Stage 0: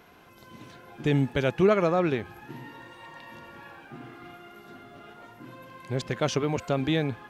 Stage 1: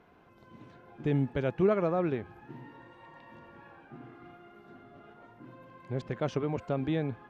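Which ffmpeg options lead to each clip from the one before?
ffmpeg -i in.wav -af "lowpass=frequency=1200:poles=1,volume=-4dB" out.wav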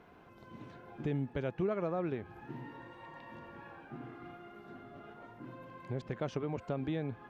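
ffmpeg -i in.wav -af "acompressor=threshold=-40dB:ratio=2,volume=2dB" out.wav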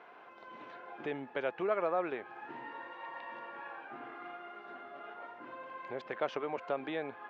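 ffmpeg -i in.wav -af "highpass=600,lowpass=3100,volume=7.5dB" out.wav

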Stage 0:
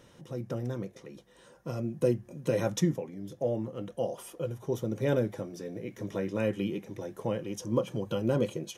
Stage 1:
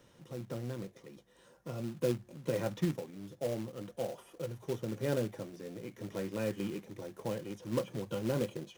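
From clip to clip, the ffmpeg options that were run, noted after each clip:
ffmpeg -i in.wav -filter_complex "[0:a]acrossover=split=3300[link_01][link_02];[link_02]acompressor=threshold=-56dB:ratio=4:attack=1:release=60[link_03];[link_01][link_03]amix=inputs=2:normalize=0,acrossover=split=120|2700[link_04][link_05][link_06];[link_05]acrusher=bits=3:mode=log:mix=0:aa=0.000001[link_07];[link_04][link_07][link_06]amix=inputs=3:normalize=0,volume=-5.5dB" out.wav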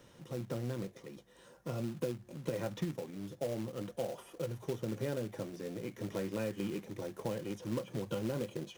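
ffmpeg -i in.wav -af "acompressor=threshold=-35dB:ratio=10,volume=3dB" out.wav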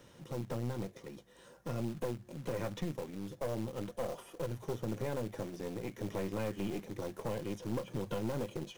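ffmpeg -i in.wav -af "aeval=exprs='(tanh(50.1*val(0)+0.6)-tanh(0.6))/50.1':channel_layout=same,volume=4dB" out.wav

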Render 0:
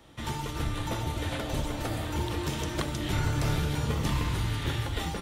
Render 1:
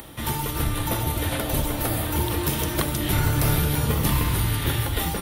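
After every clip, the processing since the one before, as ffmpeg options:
ffmpeg -i in.wav -af "acompressor=mode=upward:threshold=-43dB:ratio=2.5,aexciter=amount=6.6:drive=4.6:freq=9700,volume=6dB" out.wav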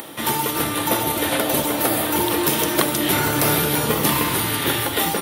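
ffmpeg -i in.wav -af "highpass=290,lowshelf=frequency=370:gain=3.5,volume=7dB" out.wav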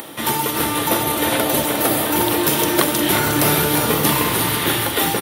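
ffmpeg -i in.wav -af "aecho=1:1:358:0.422,volume=1.5dB" out.wav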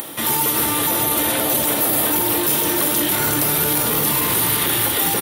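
ffmpeg -i in.wav -af "alimiter=limit=-13dB:level=0:latency=1:release=11,crystalizer=i=1:c=0" out.wav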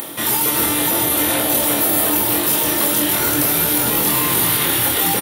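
ffmpeg -i in.wav -filter_complex "[0:a]asplit=2[link_01][link_02];[link_02]adelay=24,volume=-3.5dB[link_03];[link_01][link_03]amix=inputs=2:normalize=0" out.wav

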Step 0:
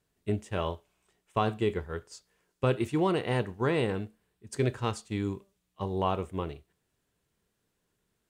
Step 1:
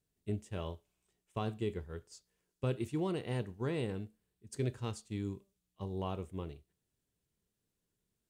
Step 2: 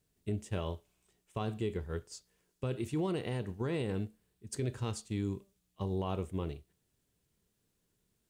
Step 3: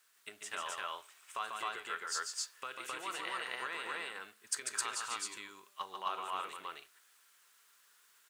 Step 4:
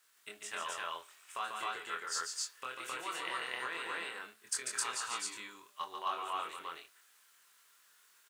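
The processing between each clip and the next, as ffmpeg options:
ffmpeg -i in.wav -af "equalizer=frequency=1200:width_type=o:width=2.8:gain=-8.5,volume=-5dB" out.wav
ffmpeg -i in.wav -af "alimiter=level_in=8.5dB:limit=-24dB:level=0:latency=1:release=97,volume=-8.5dB,volume=6.5dB" out.wav
ffmpeg -i in.wav -filter_complex "[0:a]acompressor=threshold=-42dB:ratio=6,highpass=frequency=1300:width_type=q:width=2.5,asplit=2[link_01][link_02];[link_02]aecho=0:1:142.9|262.4:0.562|1[link_03];[link_01][link_03]amix=inputs=2:normalize=0,volume=11dB" out.wav
ffmpeg -i in.wav -filter_complex "[0:a]asplit=2[link_01][link_02];[link_02]adelay=24,volume=-3dB[link_03];[link_01][link_03]amix=inputs=2:normalize=0,volume=-1dB" out.wav

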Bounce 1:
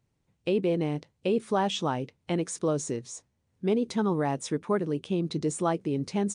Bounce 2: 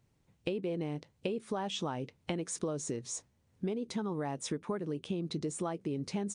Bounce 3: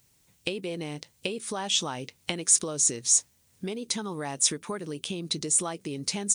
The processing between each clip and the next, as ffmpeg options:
ffmpeg -i in.wav -af "acompressor=threshold=-35dB:ratio=10,volume=3dB" out.wav
ffmpeg -i in.wav -af "crystalizer=i=8.5:c=0" out.wav

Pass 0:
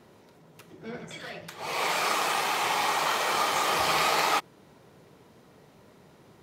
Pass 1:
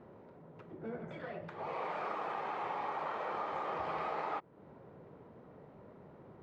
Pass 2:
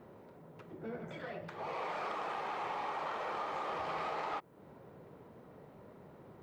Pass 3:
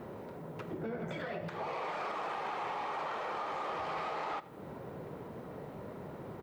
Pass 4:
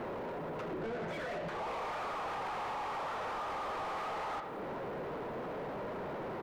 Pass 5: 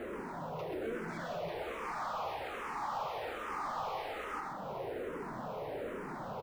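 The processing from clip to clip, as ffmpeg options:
ffmpeg -i in.wav -af "lowpass=1300,equalizer=frequency=530:width=4.1:gain=3,acompressor=threshold=-40dB:ratio=2.5" out.wav
ffmpeg -i in.wav -af "aeval=exprs='0.0562*sin(PI/2*1.41*val(0)/0.0562)':channel_layout=same,crystalizer=i=2.5:c=0,volume=-7dB" out.wav
ffmpeg -i in.wav -af "alimiter=level_in=17dB:limit=-24dB:level=0:latency=1:release=155,volume=-17dB,aecho=1:1:82|164|246|328|410:0.112|0.0628|0.0352|0.0197|0.011,volume=10dB" out.wav
ffmpeg -i in.wav -filter_complex "[0:a]asplit=2[link_01][link_02];[link_02]highpass=frequency=720:poles=1,volume=27dB,asoftclip=type=tanh:threshold=-29.5dB[link_03];[link_01][link_03]amix=inputs=2:normalize=0,lowpass=frequency=1500:poles=1,volume=-6dB,volume=-2.5dB" out.wav
ffmpeg -i in.wav -filter_complex "[0:a]acrusher=bits=7:mode=log:mix=0:aa=0.000001,aecho=1:1:130:0.562,asplit=2[link_01][link_02];[link_02]afreqshift=-1.2[link_03];[link_01][link_03]amix=inputs=2:normalize=1,volume=1dB" out.wav

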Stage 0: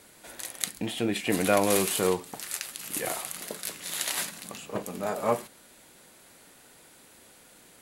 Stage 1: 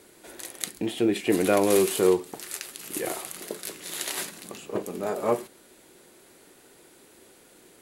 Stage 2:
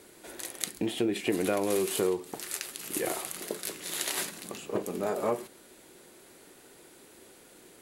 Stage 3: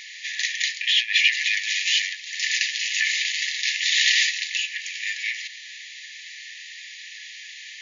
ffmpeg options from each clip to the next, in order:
ffmpeg -i in.wav -af "equalizer=frequency=370:width_type=o:width=0.64:gain=11,volume=-1.5dB" out.wav
ffmpeg -i in.wav -af "acompressor=threshold=-25dB:ratio=4" out.wav
ffmpeg -i in.wav -filter_complex "[0:a]asplit=2[link_01][link_02];[link_02]highpass=frequency=720:poles=1,volume=27dB,asoftclip=type=tanh:threshold=-6dB[link_03];[link_01][link_03]amix=inputs=2:normalize=0,lowpass=frequency=2300:poles=1,volume=-6dB,afftfilt=real='re*between(b*sr/4096,1700,7100)':imag='im*between(b*sr/4096,1700,7100)':win_size=4096:overlap=0.75,volume=6dB" out.wav

